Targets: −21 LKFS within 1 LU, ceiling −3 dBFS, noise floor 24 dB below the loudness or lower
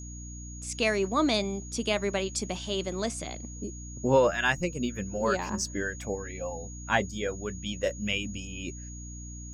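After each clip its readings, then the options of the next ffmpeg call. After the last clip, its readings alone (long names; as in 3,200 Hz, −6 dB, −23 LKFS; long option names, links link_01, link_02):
mains hum 60 Hz; hum harmonics up to 300 Hz; level of the hum −39 dBFS; interfering tone 6,700 Hz; level of the tone −45 dBFS; integrated loudness −30.0 LKFS; sample peak −9.5 dBFS; target loudness −21.0 LKFS
→ -af "bandreject=frequency=60:width_type=h:width=6,bandreject=frequency=120:width_type=h:width=6,bandreject=frequency=180:width_type=h:width=6,bandreject=frequency=240:width_type=h:width=6,bandreject=frequency=300:width_type=h:width=6"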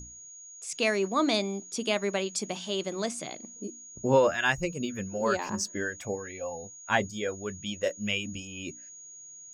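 mains hum none found; interfering tone 6,700 Hz; level of the tone −45 dBFS
→ -af "bandreject=frequency=6700:width=30"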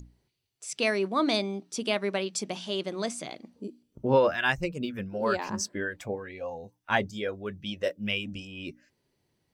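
interfering tone none found; integrated loudness −30.0 LKFS; sample peak −10.0 dBFS; target loudness −21.0 LKFS
→ -af "volume=9dB,alimiter=limit=-3dB:level=0:latency=1"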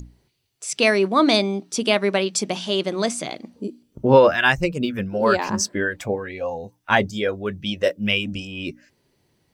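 integrated loudness −21.0 LKFS; sample peak −3.0 dBFS; background noise floor −68 dBFS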